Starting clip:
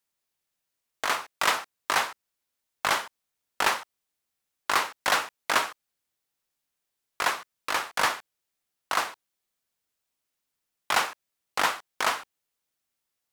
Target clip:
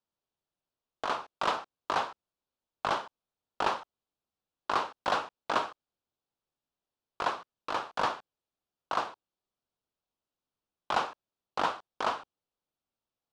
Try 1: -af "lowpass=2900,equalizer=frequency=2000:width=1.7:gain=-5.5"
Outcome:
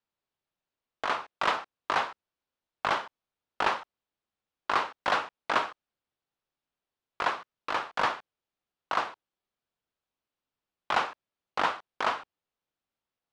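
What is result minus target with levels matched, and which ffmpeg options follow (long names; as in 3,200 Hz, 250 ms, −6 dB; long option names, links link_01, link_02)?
2,000 Hz band +3.0 dB
-af "lowpass=2900,equalizer=frequency=2000:width=1.7:gain=-14.5"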